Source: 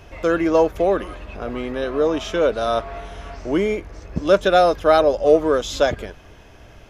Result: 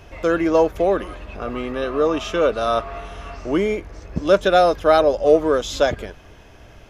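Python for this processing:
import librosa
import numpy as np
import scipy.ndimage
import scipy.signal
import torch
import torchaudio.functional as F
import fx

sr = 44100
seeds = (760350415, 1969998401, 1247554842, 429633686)

y = fx.small_body(x, sr, hz=(1200.0, 2700.0), ring_ms=45, db=11, at=(1.39, 3.56))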